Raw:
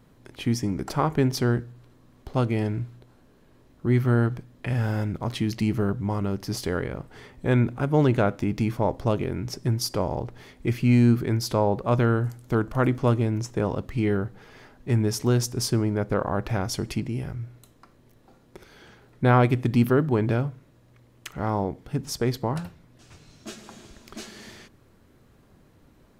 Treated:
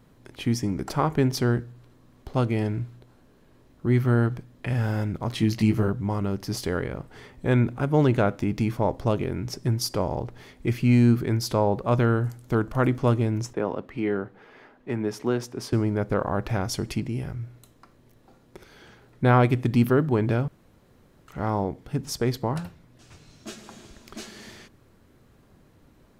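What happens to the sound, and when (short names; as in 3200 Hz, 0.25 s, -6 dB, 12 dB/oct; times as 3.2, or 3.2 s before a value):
5.36–5.88 doubler 18 ms -3.5 dB
13.53–15.73 three-band isolator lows -15 dB, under 200 Hz, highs -13 dB, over 3200 Hz
20.48–21.28 room tone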